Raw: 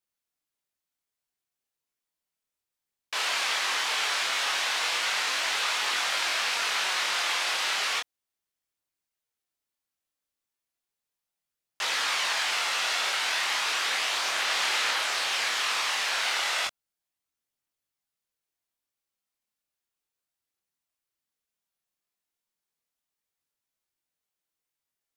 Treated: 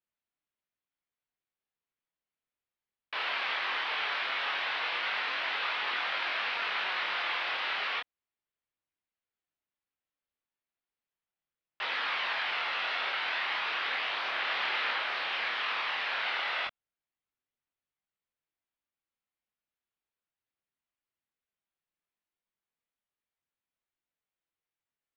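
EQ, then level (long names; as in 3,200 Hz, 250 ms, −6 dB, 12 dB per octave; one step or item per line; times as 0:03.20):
Savitzky-Golay smoothing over 15 samples
high-frequency loss of the air 490 metres
high-shelf EQ 2,500 Hz +11.5 dB
−2.5 dB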